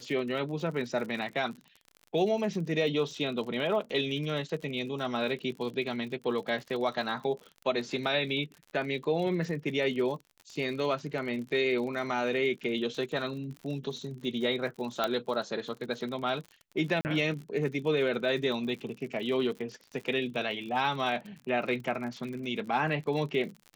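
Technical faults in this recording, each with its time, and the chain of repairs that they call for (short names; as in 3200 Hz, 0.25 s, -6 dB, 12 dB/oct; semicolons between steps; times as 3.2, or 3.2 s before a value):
crackle 53/s -38 dBFS
15.04 pop -14 dBFS
17.01–17.05 gap 39 ms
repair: de-click; interpolate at 17.01, 39 ms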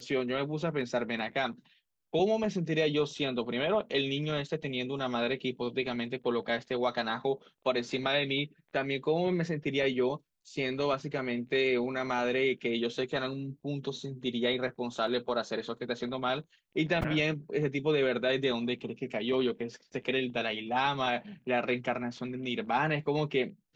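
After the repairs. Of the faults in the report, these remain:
none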